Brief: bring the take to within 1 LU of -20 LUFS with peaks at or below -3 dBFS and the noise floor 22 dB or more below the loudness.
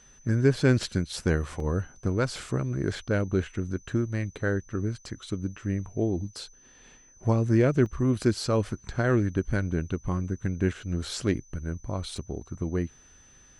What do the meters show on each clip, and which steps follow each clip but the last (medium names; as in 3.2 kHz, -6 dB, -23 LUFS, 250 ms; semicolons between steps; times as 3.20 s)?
dropouts 3; longest dropout 1.8 ms; steady tone 6.1 kHz; tone level -55 dBFS; loudness -28.5 LUFS; peak level -7.5 dBFS; loudness target -20.0 LUFS
-> interpolate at 1.60/7.86/12.17 s, 1.8 ms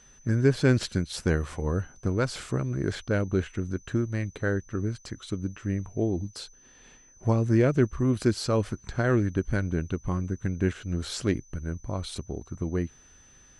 dropouts 0; steady tone 6.1 kHz; tone level -55 dBFS
-> band-stop 6.1 kHz, Q 30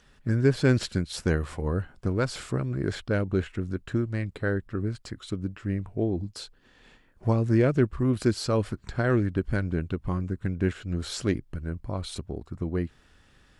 steady tone not found; loudness -28.5 LUFS; peak level -7.5 dBFS; loudness target -20.0 LUFS
-> trim +8.5 dB; peak limiter -3 dBFS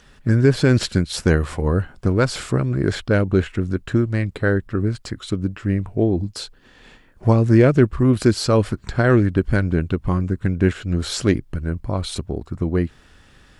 loudness -20.0 LUFS; peak level -3.0 dBFS; noise floor -51 dBFS